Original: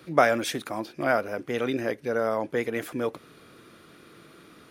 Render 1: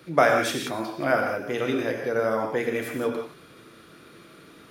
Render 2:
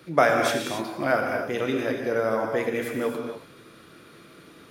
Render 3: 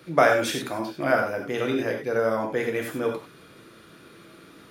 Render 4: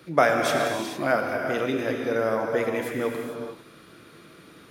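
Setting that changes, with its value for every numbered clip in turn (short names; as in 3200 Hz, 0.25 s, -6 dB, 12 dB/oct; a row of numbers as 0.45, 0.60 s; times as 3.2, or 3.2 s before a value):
non-linear reverb, gate: 0.2, 0.31, 0.12, 0.48 s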